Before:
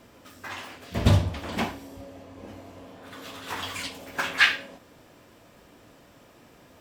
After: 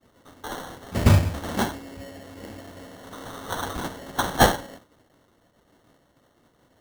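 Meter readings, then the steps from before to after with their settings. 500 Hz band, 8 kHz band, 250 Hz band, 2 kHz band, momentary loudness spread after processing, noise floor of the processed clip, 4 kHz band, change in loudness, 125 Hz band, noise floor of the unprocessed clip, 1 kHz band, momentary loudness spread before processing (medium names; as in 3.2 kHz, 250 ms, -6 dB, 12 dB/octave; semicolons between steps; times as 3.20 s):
+7.0 dB, +7.5 dB, +4.5 dB, -4.5 dB, 22 LU, -64 dBFS, -1.5 dB, +2.0 dB, +3.5 dB, -55 dBFS, +8.0 dB, 24 LU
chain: sample-and-hold 18×; expander -45 dBFS; trim +3 dB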